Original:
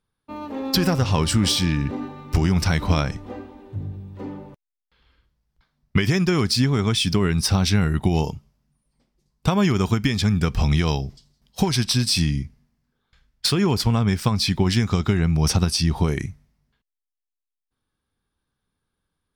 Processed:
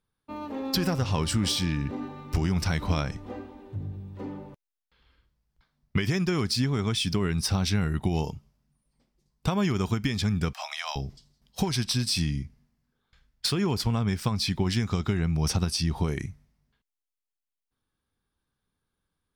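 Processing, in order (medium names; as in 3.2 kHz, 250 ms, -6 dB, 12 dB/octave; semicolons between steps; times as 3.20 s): 10.53–10.96 s: steep high-pass 590 Hz 96 dB/octave; in parallel at -2 dB: compression, threshold -29 dBFS, peak gain reduction 14.5 dB; on the sum: trim -8 dB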